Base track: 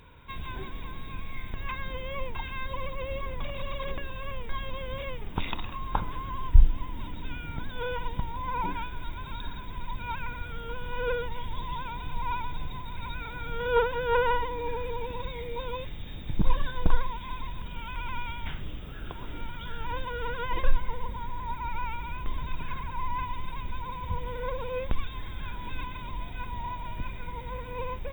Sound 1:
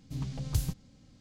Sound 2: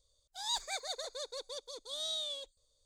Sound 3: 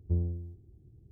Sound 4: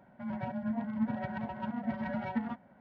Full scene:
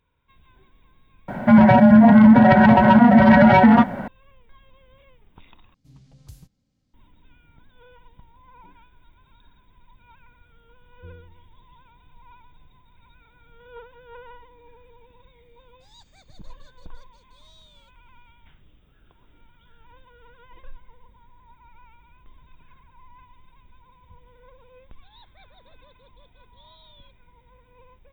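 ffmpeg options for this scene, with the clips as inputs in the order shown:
-filter_complex "[2:a]asplit=2[a][b];[0:a]volume=-19dB[c];[4:a]alimiter=level_in=32.5dB:limit=-1dB:release=50:level=0:latency=1[d];[a]acrossover=split=6900[e][f];[f]acompressor=threshold=-60dB:ratio=4:attack=1:release=60[g];[e][g]amix=inputs=2:normalize=0[h];[b]aresample=8000,aresample=44100[i];[c]asplit=2[j][k];[j]atrim=end=5.744[l];[1:a]atrim=end=1.2,asetpts=PTS-STARTPTS,volume=-15dB[m];[k]atrim=start=6.936[n];[d]atrim=end=2.8,asetpts=PTS-STARTPTS,volume=-3dB,afade=t=in:d=0.004:c=hsin,afade=t=out:st=2.796:d=0.004:c=hsin,adelay=1280[o];[3:a]atrim=end=1.11,asetpts=PTS-STARTPTS,volume=-15.5dB,afade=t=in:d=0.004:c=hsin,afade=t=out:st=1.106:d=0.004:c=hsin,adelay=10930[p];[h]atrim=end=2.85,asetpts=PTS-STARTPTS,volume=-17dB,afade=t=in:d=0.004:c=hsin,afade=t=out:st=2.846:d=0.004:c=hsin,adelay=15450[q];[i]atrim=end=2.85,asetpts=PTS-STARTPTS,volume=-14dB,afade=t=in:d=0.004:c=hsin,afade=t=out:st=2.846:d=0.004:c=hsin,adelay=24670[r];[l][m]acrossfade=d=0.004:c1=hsin:c2=hsin[s];[s][n]acrossfade=d=0.004:c1=hsin:c2=hsin[t];[t][o][p][q][r]amix=inputs=5:normalize=0"

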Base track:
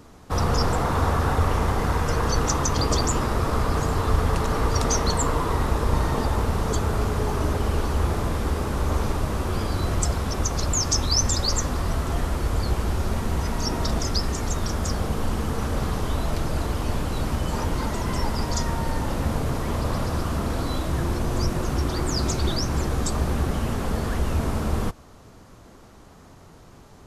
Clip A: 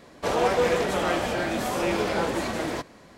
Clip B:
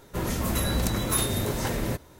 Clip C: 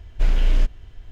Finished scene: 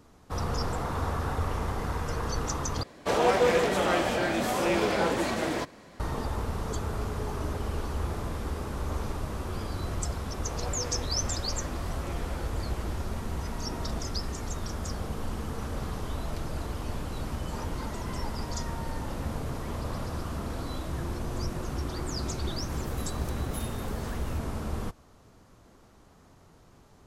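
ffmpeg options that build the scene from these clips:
-filter_complex "[1:a]asplit=2[a][b];[0:a]volume=-8.5dB,asplit=2[c][d];[c]atrim=end=2.834[e];[a]atrim=end=3.17,asetpts=PTS-STARTPTS,volume=-0.5dB[f];[d]atrim=start=5.996[g];[b]atrim=end=3.17,asetpts=PTS-STARTPTS,volume=-17.5dB,afade=t=in:d=0.004:c=hsin,afade=t=out:st=3.166:d=0.004:c=hsin,adelay=10210[h];[2:a]atrim=end=2.19,asetpts=PTS-STARTPTS,volume=-16dB,afade=t=in:d=0.004:c=hsin,afade=t=out:st=2.186:d=0.004:c=hsin,adelay=22420[i];[e][f]acrossfade=d=0.004:c1=hsin:c2=hsin[j];[j][g]acrossfade=d=0.004:c1=hsin:c2=hsin[k];[k][h][i]amix=inputs=3:normalize=0"

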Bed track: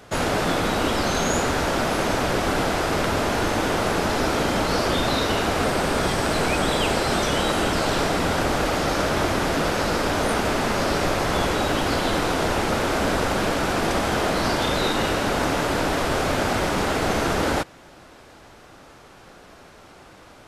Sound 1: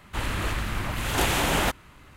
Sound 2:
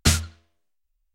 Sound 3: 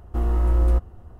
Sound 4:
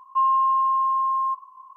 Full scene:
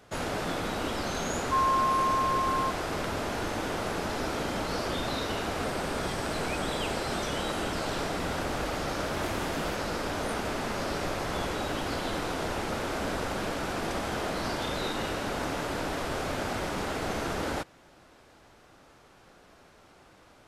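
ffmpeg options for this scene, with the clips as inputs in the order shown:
-filter_complex "[0:a]volume=-9.5dB[a];[4:a]atrim=end=1.76,asetpts=PTS-STARTPTS,volume=-6dB,afade=t=in:d=0.004:c=hsin,afade=t=out:st=1.756:d=0.004:c=hsin,adelay=1360[b];[1:a]atrim=end=2.16,asetpts=PTS-STARTPTS,volume=-17.5dB,afade=t=in:d=0.004:c=hsin,afade=t=out:st=2.156:d=0.004:c=hsin,adelay=8050[c];[a][b][c]amix=inputs=3:normalize=0"

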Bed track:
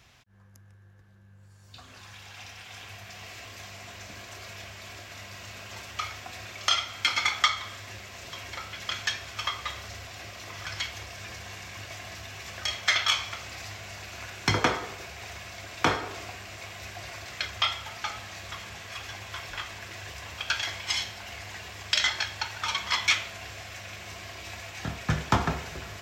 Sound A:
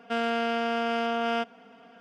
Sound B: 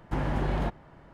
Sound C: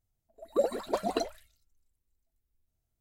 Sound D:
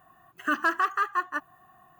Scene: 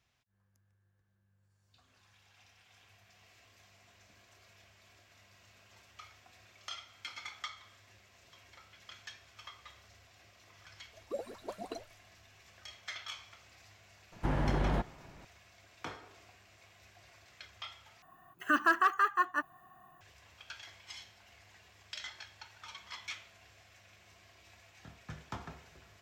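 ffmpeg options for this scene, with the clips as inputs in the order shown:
-filter_complex "[0:a]volume=-19.5dB,asplit=2[a][b];[a]atrim=end=18.024[c];[4:a]atrim=end=1.99,asetpts=PTS-STARTPTS,volume=-2dB[d];[b]atrim=start=20.006[e];[3:a]atrim=end=3,asetpts=PTS-STARTPTS,volume=-12.5dB,afade=t=in:d=0.004:c=hsin,afade=t=out:st=2.996:d=0.004:c=hsin,adelay=10550[f];[2:a]atrim=end=1.13,asetpts=PTS-STARTPTS,volume=-2.5dB,afade=t=in:d=0.004:c=hsin,afade=t=out:st=1.126:d=0.004:c=hsin,adelay=622692S[g];[c][d]acrossfade=d=0.004:c1=hsin:c2=hsin[h];[h][e]acrossfade=d=0.004:c1=hsin:c2=hsin[i];[i][f][g]amix=inputs=3:normalize=0"

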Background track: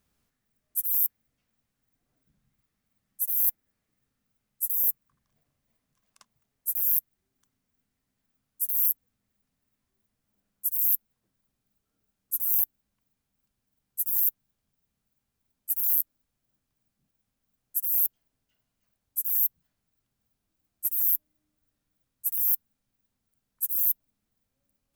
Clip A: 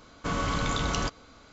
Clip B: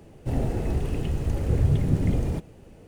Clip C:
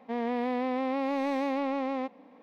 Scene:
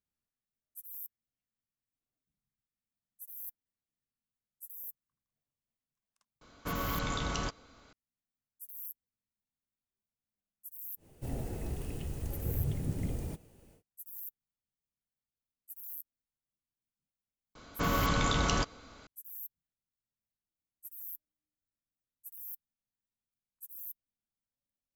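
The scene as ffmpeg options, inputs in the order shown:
-filter_complex "[1:a]asplit=2[a][b];[0:a]volume=-20dB[c];[2:a]aemphasis=mode=production:type=50fm[d];[a]atrim=end=1.52,asetpts=PTS-STARTPTS,volume=-6dB,afade=t=in:d=0.004:c=hsin,afade=t=out:st=1.516:d=0.004:c=hsin,adelay=6410[e];[d]atrim=end=2.87,asetpts=PTS-STARTPTS,volume=-11.5dB,afade=t=in:d=0.1,afade=t=out:st=2.77:d=0.1,adelay=10960[f];[b]atrim=end=1.52,asetpts=PTS-STARTPTS,volume=-0.5dB,afade=t=in:d=0.004:c=hsin,afade=t=out:st=1.516:d=0.004:c=hsin,adelay=17550[g];[c][e][f][g]amix=inputs=4:normalize=0"

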